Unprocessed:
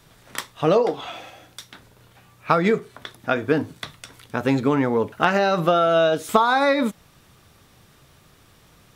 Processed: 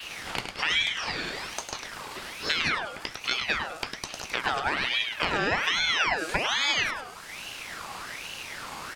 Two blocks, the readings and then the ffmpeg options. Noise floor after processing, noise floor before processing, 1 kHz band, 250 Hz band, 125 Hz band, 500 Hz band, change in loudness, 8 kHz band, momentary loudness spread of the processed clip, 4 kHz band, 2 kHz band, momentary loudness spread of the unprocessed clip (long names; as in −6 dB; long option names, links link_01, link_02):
−43 dBFS, −55 dBFS, −8.5 dB, −16.5 dB, −13.5 dB, −16.5 dB, −7.0 dB, +4.0 dB, 13 LU, +6.5 dB, +1.5 dB, 16 LU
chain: -filter_complex "[0:a]lowpass=10000,acompressor=mode=upward:threshold=-22dB:ratio=2.5,aexciter=amount=2:drive=6.4:freq=6600,acrossover=split=570|3400[link_01][link_02][link_03];[link_01]acompressor=threshold=-27dB:ratio=4[link_04];[link_02]acompressor=threshold=-27dB:ratio=4[link_05];[link_03]acompressor=threshold=-48dB:ratio=4[link_06];[link_04][link_05][link_06]amix=inputs=3:normalize=0,adynamicequalizer=threshold=0.00316:dfrequency=4000:dqfactor=0.94:tfrequency=4000:tqfactor=0.94:attack=5:release=100:ratio=0.375:range=4:mode=boostabove:tftype=bell,aecho=1:1:103|206|309|412|515:0.501|0.216|0.0927|0.0398|0.0171,aeval=exprs='val(0)*sin(2*PI*1900*n/s+1900*0.5/1.2*sin(2*PI*1.2*n/s))':channel_layout=same"